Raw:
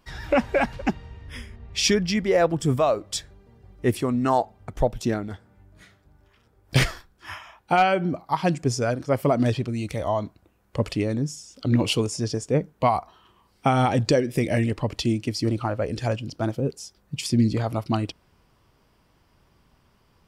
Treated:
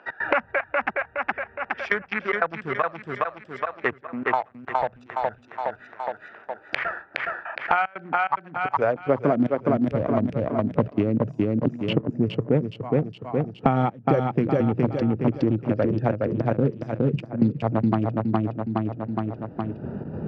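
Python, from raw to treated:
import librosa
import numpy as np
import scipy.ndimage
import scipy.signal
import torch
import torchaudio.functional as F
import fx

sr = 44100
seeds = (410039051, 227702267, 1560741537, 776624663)

p1 = fx.wiener(x, sr, points=41)
p2 = scipy.signal.sosfilt(scipy.signal.butter(2, 1800.0, 'lowpass', fs=sr, output='sos'), p1)
p3 = fx.hum_notches(p2, sr, base_hz=60, count=3)
p4 = fx.step_gate(p3, sr, bpm=149, pattern='x.xxxx..x.x', floor_db=-24.0, edge_ms=4.5)
p5 = fx.filter_sweep_highpass(p4, sr, from_hz=1400.0, to_hz=140.0, start_s=8.47, end_s=9.5, q=1.1)
p6 = p5 + fx.echo_feedback(p5, sr, ms=416, feedback_pct=35, wet_db=-4.0, dry=0)
p7 = fx.band_squash(p6, sr, depth_pct=100)
y = p7 * librosa.db_to_amplitude(4.5)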